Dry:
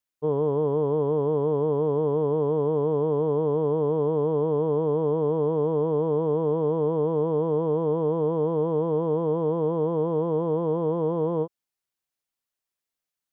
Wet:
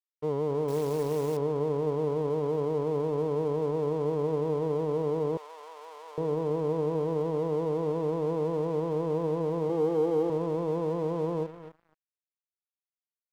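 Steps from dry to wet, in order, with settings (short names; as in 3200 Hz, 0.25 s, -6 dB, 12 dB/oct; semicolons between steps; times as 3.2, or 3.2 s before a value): in parallel at 0 dB: limiter -23.5 dBFS, peak gain reduction 9 dB; 9.69–10.3 on the sum: comb 2.5 ms, depth 91%; feedback echo 0.253 s, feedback 26%, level -12.5 dB; crossover distortion -40.5 dBFS; 0.68–1.37 short-mantissa float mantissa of 2-bit; 5.37–6.18 Bessel high-pass 1200 Hz, order 4; gain -7.5 dB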